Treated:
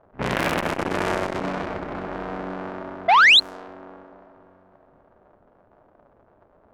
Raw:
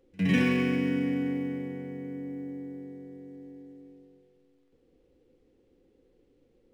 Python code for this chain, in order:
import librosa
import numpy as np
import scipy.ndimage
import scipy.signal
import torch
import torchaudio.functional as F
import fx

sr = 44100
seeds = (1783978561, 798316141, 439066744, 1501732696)

y = fx.cycle_switch(x, sr, every=3, mode='inverted')
y = fx.band_shelf(y, sr, hz=1000.0, db=8.0, octaves=1.7)
y = fx.echo_feedback(y, sr, ms=532, feedback_pct=42, wet_db=-11.5)
y = fx.spec_paint(y, sr, seeds[0], shape='rise', start_s=3.08, length_s=0.32, low_hz=640.0, high_hz=4300.0, level_db=-16.0)
y = fx.env_lowpass(y, sr, base_hz=1500.0, full_db=-18.5)
y = fx.transformer_sat(y, sr, knee_hz=2600.0)
y = F.gain(torch.from_numpy(y), 4.5).numpy()